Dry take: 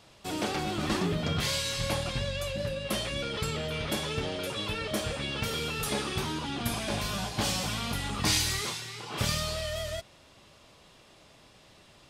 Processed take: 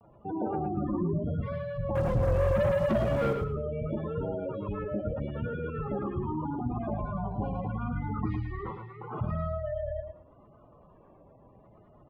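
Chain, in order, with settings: spectral gate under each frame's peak -10 dB strong; low-pass 1.4 kHz 24 dB/octave; in parallel at +1 dB: peak limiter -27.5 dBFS, peak gain reduction 8 dB; 1.96–3.34 s: on the sum: waveshaping leveller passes 3; vibrato 0.78 Hz 73 cents; on a send: feedback delay 110 ms, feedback 21%, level -7 dB; on the sum: trim -4 dB

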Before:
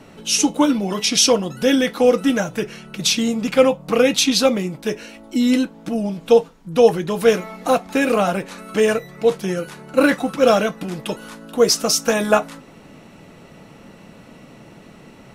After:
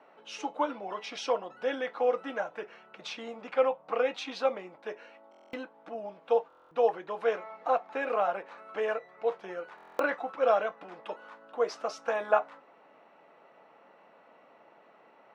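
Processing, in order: ladder band-pass 970 Hz, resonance 20%; buffer glitch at 5.30/6.48/9.76 s, samples 1024, times 9; trim +3 dB

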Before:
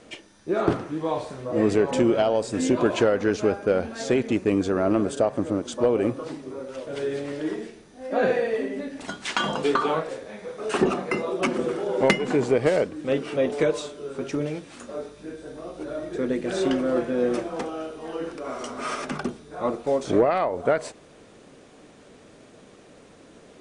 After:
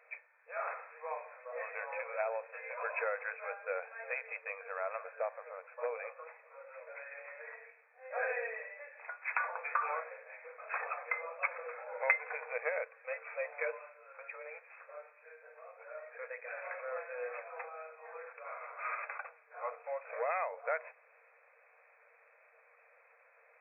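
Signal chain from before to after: differentiator; FFT band-pass 450–2600 Hz; trim +7 dB

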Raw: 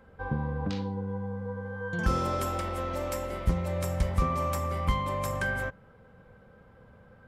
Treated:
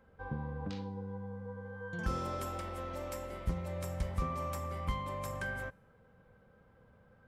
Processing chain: feedback comb 160 Hz, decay 1.1 s, mix 40%; trim -4 dB

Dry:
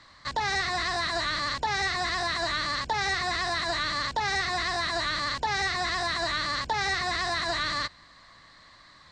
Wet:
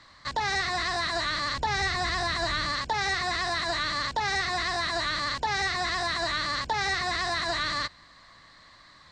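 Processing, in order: 1.55–2.72 s: bass shelf 160 Hz +7.5 dB

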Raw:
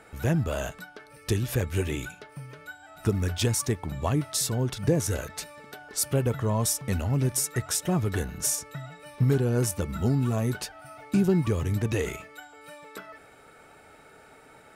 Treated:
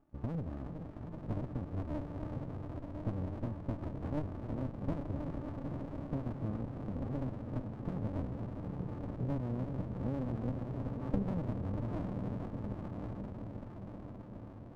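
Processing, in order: backward echo that repeats 190 ms, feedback 81%, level -13.5 dB; gate -40 dBFS, range -12 dB; resonant high shelf 1.7 kHz -12 dB, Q 1.5; compression 3:1, threshold -33 dBFS, peak gain reduction 12 dB; cascade formant filter u; echo that smears into a reverb 984 ms, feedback 59%, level -4.5 dB; sliding maximum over 65 samples; trim +7.5 dB

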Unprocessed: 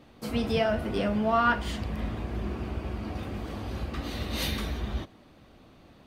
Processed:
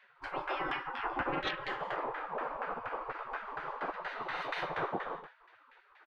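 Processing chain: treble shelf 8.2 kHz +5 dB; multi-tap echo 116/145/155/177/188/283 ms -14/-8/-5/-8.5/-9/-17.5 dB; in parallel at -2 dB: compression, threshold -35 dBFS, peak gain reduction 17 dB; on the sum: LFO low-pass saw down 4.2 Hz 680–1500 Hz; saturation -6.5 dBFS, distortion -24 dB; bass shelf 310 Hz +10.5 dB; spectral gate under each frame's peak -25 dB weak; trim +2 dB

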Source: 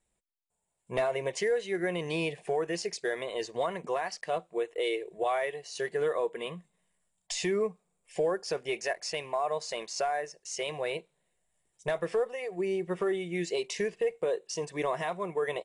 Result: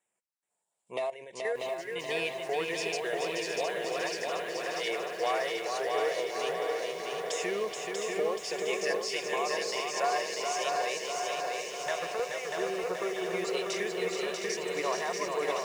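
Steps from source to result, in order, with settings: frequency weighting A; 0.98–1.96 s: level held to a coarse grid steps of 15 dB; LFO notch saw down 0.41 Hz 340–4600 Hz; on a send: shuffle delay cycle 713 ms, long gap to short 1.5:1, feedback 62%, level -5 dB; on the sum: bit-crushed delay 640 ms, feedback 55%, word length 9-bit, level -3.5 dB

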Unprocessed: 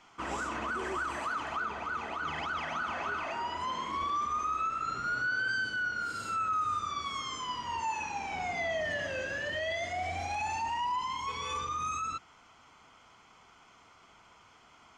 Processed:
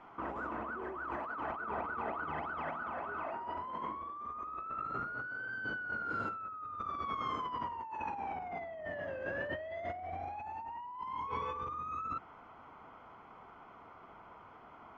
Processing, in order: low-pass 1.1 kHz 12 dB/octave; bass shelf 200 Hz -6.5 dB; compressor with a negative ratio -44 dBFS, ratio -1; trim +3.5 dB

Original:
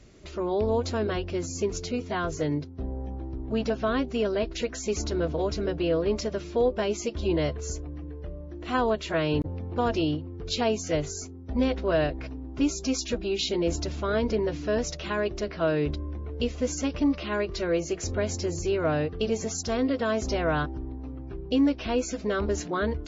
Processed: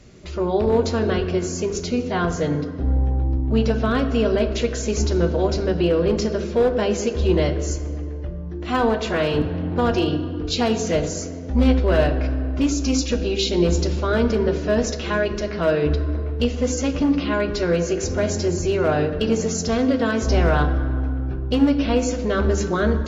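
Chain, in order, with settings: 1.38–1.82 s: bass shelf 220 Hz -7.5 dB; overload inside the chain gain 18.5 dB; on a send: reverberation RT60 2.2 s, pre-delay 3 ms, DRR 6 dB; on the sum: trim +5 dB

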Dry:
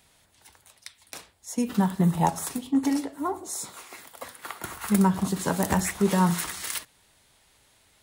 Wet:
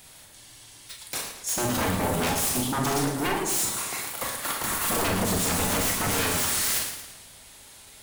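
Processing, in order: octave divider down 1 oct, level -3 dB; treble shelf 5.3 kHz +7.5 dB; in parallel at +2 dB: compression, threshold -27 dBFS, peak gain reduction 12 dB; on the sum: wavefolder -22.5 dBFS; Schroeder reverb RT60 0.31 s, combs from 28 ms, DRR 2.5 dB; spectral freeze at 0.36 s, 0.53 s; modulated delay 113 ms, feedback 50%, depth 159 cents, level -8.5 dB

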